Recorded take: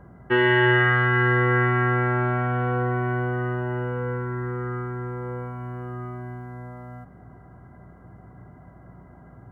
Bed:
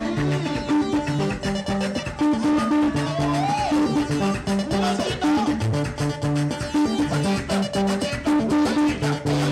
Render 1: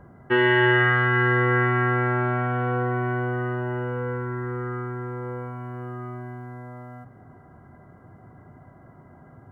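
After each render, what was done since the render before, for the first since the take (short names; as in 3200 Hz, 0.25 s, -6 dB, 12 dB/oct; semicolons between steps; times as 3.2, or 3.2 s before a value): de-hum 60 Hz, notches 3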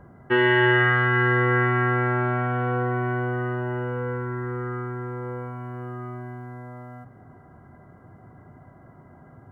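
nothing audible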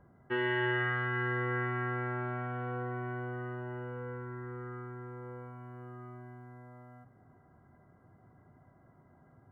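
gain -12.5 dB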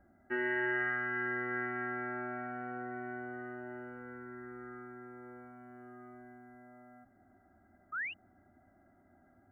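7.92–8.14 painted sound rise 1200–3000 Hz -36 dBFS; fixed phaser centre 690 Hz, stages 8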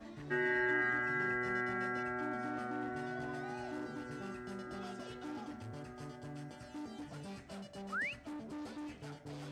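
add bed -25.5 dB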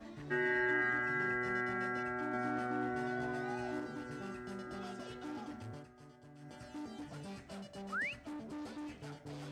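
2.32–3.8 doubler 16 ms -4 dB; 5.72–6.55 dip -10 dB, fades 0.16 s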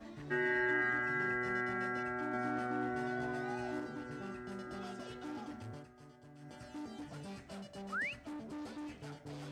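3.89–4.52 high shelf 5000 Hz -5 dB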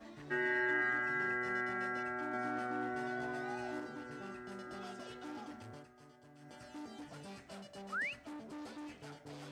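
low shelf 220 Hz -8 dB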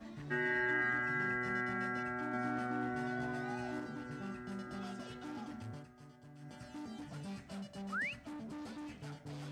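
resonant low shelf 270 Hz +6.5 dB, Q 1.5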